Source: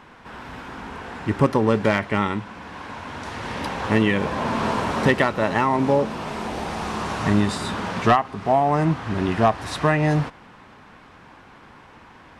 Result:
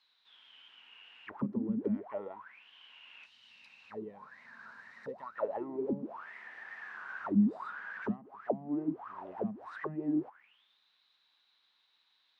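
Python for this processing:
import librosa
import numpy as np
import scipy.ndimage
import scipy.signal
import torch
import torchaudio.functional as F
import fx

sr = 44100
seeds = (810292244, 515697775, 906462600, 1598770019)

y = fx.spec_box(x, sr, start_s=3.26, length_s=2.1, low_hz=270.0, high_hz=3600.0, gain_db=-11)
y = fx.auto_wah(y, sr, base_hz=200.0, top_hz=4300.0, q=16.0, full_db=-14.0, direction='down')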